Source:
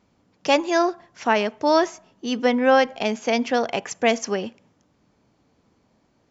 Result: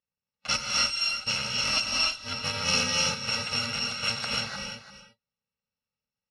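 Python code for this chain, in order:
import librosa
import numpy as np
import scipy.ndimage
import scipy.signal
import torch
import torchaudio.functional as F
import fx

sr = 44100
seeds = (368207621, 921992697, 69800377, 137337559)

y = fx.bit_reversed(x, sr, seeds[0], block=128)
y = scipy.signal.sosfilt(scipy.signal.butter(4, 4900.0, 'lowpass', fs=sr, output='sos'), y)
y = fx.low_shelf(y, sr, hz=380.0, db=-9.0)
y = fx.rev_gated(y, sr, seeds[1], gate_ms=330, shape='rising', drr_db=-1.5)
y = fx.noise_reduce_blind(y, sr, reduce_db=23)
y = y + 10.0 ** (-12.5 / 20.0) * np.pad(y, (int(342 * sr / 1000.0), 0))[:len(y)]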